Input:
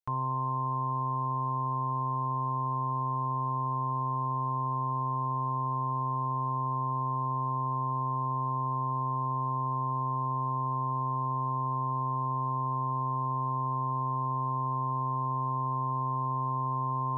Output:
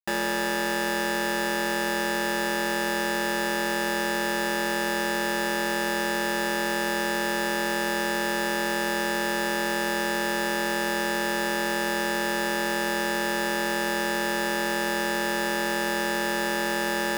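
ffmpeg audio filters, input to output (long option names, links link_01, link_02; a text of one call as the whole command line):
ffmpeg -i in.wav -af "acrusher=bits=4:mix=0:aa=0.000001,aeval=exprs='val(0)*sin(2*PI*700*n/s)':channel_layout=same,volume=5.5dB" out.wav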